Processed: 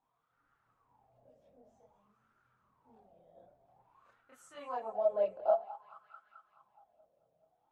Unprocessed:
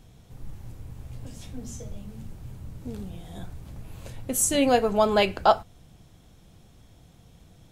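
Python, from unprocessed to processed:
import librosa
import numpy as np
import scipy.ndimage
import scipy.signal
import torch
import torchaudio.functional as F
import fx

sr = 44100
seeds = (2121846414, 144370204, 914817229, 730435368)

y = fx.chorus_voices(x, sr, voices=6, hz=0.35, base_ms=28, depth_ms=4.4, mix_pct=60)
y = fx.echo_thinned(y, sr, ms=215, feedback_pct=69, hz=280.0, wet_db=-18)
y = fx.wah_lfo(y, sr, hz=0.52, low_hz=570.0, high_hz=1400.0, q=8.4)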